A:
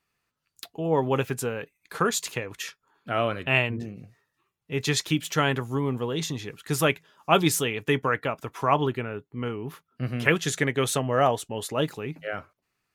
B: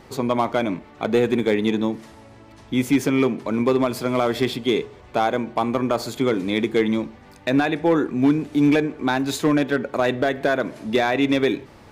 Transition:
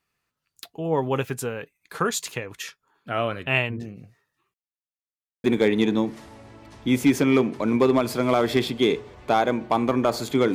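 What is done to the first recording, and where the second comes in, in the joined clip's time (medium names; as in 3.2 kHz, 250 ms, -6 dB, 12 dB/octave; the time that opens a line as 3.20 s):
A
4.54–5.44 s: mute
5.44 s: go over to B from 1.30 s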